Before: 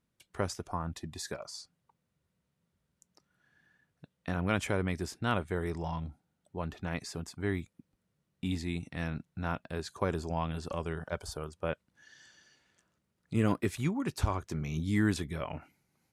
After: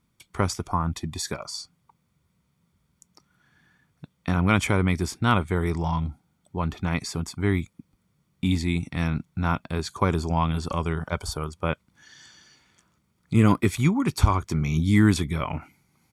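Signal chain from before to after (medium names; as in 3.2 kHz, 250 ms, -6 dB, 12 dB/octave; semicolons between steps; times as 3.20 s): comb 0.9 ms, depth 41%; trim +8.5 dB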